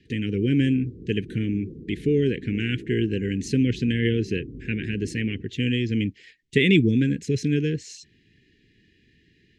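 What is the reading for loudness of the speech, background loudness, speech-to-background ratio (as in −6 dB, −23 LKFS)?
−24.5 LKFS, −41.0 LKFS, 16.5 dB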